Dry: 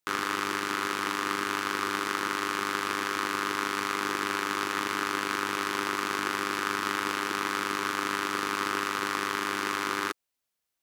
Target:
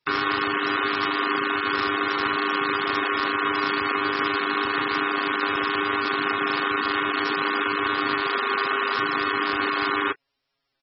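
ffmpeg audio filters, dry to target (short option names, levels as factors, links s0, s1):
-filter_complex "[0:a]asettb=1/sr,asplit=3[s0][s1][s2];[s0]atrim=end=8.204[s3];[s1]atrim=start=8.2:end=8.98,asetpts=PTS-STARTPTS,afade=t=in:d=0.004:c=qsin,afade=t=out:st=0.776:d=0.004:c=qsin,bandreject=f=50:t=h:w=6,bandreject=f=100:t=h:w=6,bandreject=f=150:t=h:w=6,bandreject=f=200:t=h:w=6,bandreject=f=250:t=h:w=6,bandreject=f=300:t=h:w=6,bandreject=f=350:t=h:w=6[s4];[s2]atrim=start=8.976[s5];[s3][s4]acrossfade=d=0.004:c1=hsin:c2=qsin[s6];[s6][s5]acrossfade=d=0.004:c1=qsin:c2=hsin,aecho=1:1:7.3:0.97,alimiter=limit=0.158:level=0:latency=1:release=109,volume=2.37" -ar 24000 -c:a libmp3lame -b:a 16k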